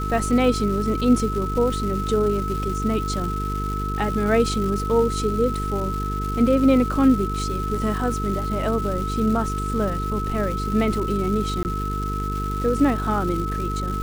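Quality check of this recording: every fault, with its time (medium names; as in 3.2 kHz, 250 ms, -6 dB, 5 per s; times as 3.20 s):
buzz 50 Hz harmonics 9 -27 dBFS
crackle 560 per s -30 dBFS
whine 1.3 kHz -28 dBFS
11.63–11.65 s: dropout 19 ms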